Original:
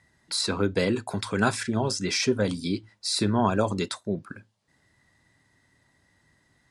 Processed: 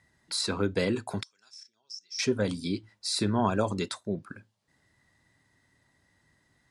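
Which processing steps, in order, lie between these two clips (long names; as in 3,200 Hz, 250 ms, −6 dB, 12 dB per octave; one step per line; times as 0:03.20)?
0:01.23–0:02.19: resonant band-pass 5,500 Hz, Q 17
level −3 dB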